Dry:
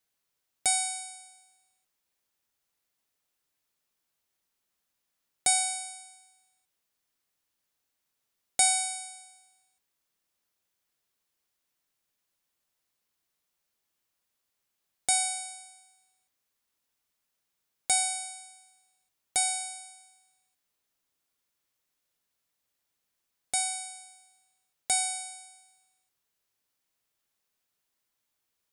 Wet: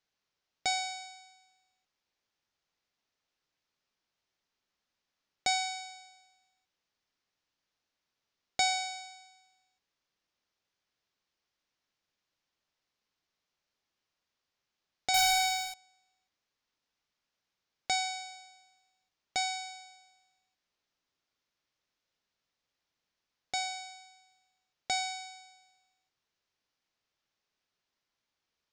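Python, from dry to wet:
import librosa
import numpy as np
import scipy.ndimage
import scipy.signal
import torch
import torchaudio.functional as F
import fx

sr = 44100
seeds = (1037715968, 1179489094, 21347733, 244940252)

y = scipy.signal.sosfilt(scipy.signal.butter(6, 6100.0, 'lowpass', fs=sr, output='sos'), x)
y = fx.leveller(y, sr, passes=5, at=(15.14, 15.74))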